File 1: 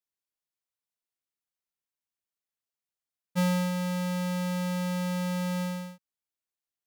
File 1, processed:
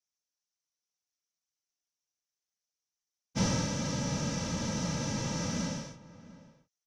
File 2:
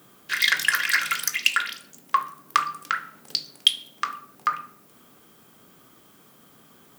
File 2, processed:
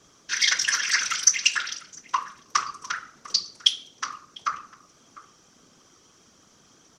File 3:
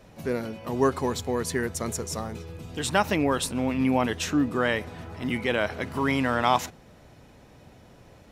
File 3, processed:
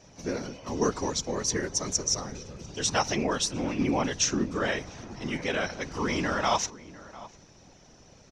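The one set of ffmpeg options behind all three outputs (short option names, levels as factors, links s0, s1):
-filter_complex "[0:a]afftfilt=real='hypot(re,im)*cos(2*PI*random(0))':imag='hypot(re,im)*sin(2*PI*random(1))':win_size=512:overlap=0.75,lowpass=f=5900:t=q:w=7.5,asplit=2[s0][s1];[s1]adelay=699.7,volume=0.126,highshelf=f=4000:g=-15.7[s2];[s0][s2]amix=inputs=2:normalize=0,volume=1.26"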